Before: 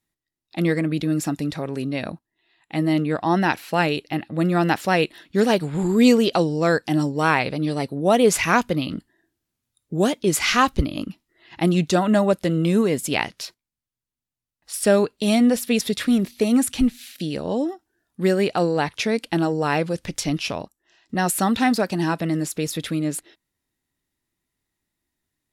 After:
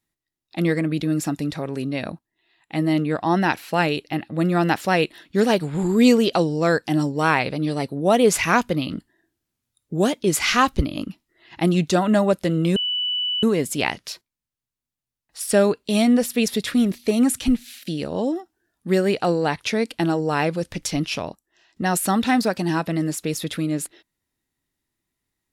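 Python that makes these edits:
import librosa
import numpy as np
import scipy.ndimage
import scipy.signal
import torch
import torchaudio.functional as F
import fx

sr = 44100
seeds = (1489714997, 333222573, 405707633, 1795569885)

y = fx.edit(x, sr, fx.insert_tone(at_s=12.76, length_s=0.67, hz=2970.0, db=-21.0), tone=tone)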